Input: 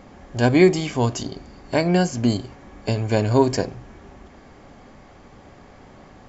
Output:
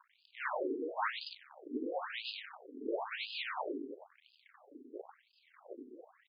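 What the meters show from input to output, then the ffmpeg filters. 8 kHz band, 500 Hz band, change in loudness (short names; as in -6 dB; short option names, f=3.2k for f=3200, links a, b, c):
n/a, -19.0 dB, -19.5 dB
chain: -filter_complex "[0:a]aphaser=in_gain=1:out_gain=1:delay=4.6:decay=0.71:speed=1.4:type=triangular,bandreject=f=140.6:t=h:w=4,bandreject=f=281.2:t=h:w=4,bandreject=f=421.8:t=h:w=4,bandreject=f=562.4:t=h:w=4,bandreject=f=703:t=h:w=4,bandreject=f=843.6:t=h:w=4,bandreject=f=984.2:t=h:w=4,bandreject=f=1.1248k:t=h:w=4,bandreject=f=1.2654k:t=h:w=4,bandreject=f=1.406k:t=h:w=4,bandreject=f=1.5466k:t=h:w=4,bandreject=f=1.6872k:t=h:w=4,bandreject=f=1.8278k:t=h:w=4,bandreject=f=1.9684k:t=h:w=4,bandreject=f=2.109k:t=h:w=4,bandreject=f=2.2496k:t=h:w=4,bandreject=f=2.3902k:t=h:w=4,bandreject=f=2.5308k:t=h:w=4,bandreject=f=2.6714k:t=h:w=4,bandreject=f=2.812k:t=h:w=4,bandreject=f=2.9526k:t=h:w=4,bandreject=f=3.0932k:t=h:w=4,bandreject=f=3.2338k:t=h:w=4,bandreject=f=3.3744k:t=h:w=4,bandreject=f=3.515k:t=h:w=4,bandreject=f=3.6556k:t=h:w=4,bandreject=f=3.7962k:t=h:w=4,acrossover=split=240|1100|3600[a][b][c][d];[a]aeval=exprs='0.335*sin(PI/2*8.91*val(0)/0.335)':c=same[e];[d]acompressor=mode=upward:threshold=-51dB:ratio=2.5[f];[e][b][c][f]amix=inputs=4:normalize=0,aeval=exprs='(tanh(22.4*val(0)+0.55)-tanh(0.55))/22.4':c=same,agate=range=-22dB:threshold=-25dB:ratio=16:detection=peak,crystalizer=i=2:c=0,aecho=1:1:96:0.473,afftfilt=real='re*between(b*sr/1024,310*pow(3600/310,0.5+0.5*sin(2*PI*0.98*pts/sr))/1.41,310*pow(3600/310,0.5+0.5*sin(2*PI*0.98*pts/sr))*1.41)':imag='im*between(b*sr/1024,310*pow(3600/310,0.5+0.5*sin(2*PI*0.98*pts/sr))/1.41,310*pow(3600/310,0.5+0.5*sin(2*PI*0.98*pts/sr))*1.41)':win_size=1024:overlap=0.75,volume=9.5dB"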